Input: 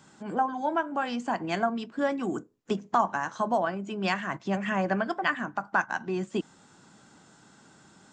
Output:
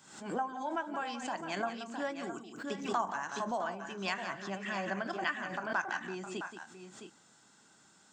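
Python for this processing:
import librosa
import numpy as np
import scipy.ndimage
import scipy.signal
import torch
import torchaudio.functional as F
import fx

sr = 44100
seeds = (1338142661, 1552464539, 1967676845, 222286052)

p1 = fx.tilt_eq(x, sr, slope=2.0)
p2 = p1 + fx.echo_multitap(p1, sr, ms=(177, 662, 690), db=(-11.0, -10.0, -16.5), dry=0)
p3 = fx.pre_swell(p2, sr, db_per_s=81.0)
y = p3 * librosa.db_to_amplitude(-8.5)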